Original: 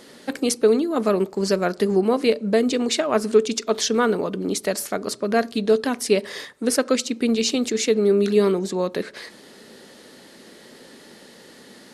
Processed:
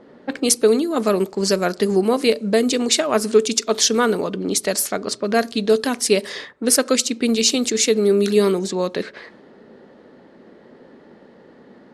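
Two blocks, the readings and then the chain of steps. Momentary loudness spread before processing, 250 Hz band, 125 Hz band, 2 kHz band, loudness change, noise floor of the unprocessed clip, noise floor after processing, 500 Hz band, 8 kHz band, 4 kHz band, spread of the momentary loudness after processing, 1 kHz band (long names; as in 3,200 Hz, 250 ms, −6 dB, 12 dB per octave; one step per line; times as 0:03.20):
8 LU, +1.5 dB, +1.5 dB, +3.0 dB, +2.5 dB, −47 dBFS, −48 dBFS, +1.5 dB, +8.0 dB, +6.0 dB, 7 LU, +2.0 dB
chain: high-shelf EQ 4,400 Hz +9.5 dB
low-pass that shuts in the quiet parts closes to 920 Hz, open at −16.5 dBFS
level +1.5 dB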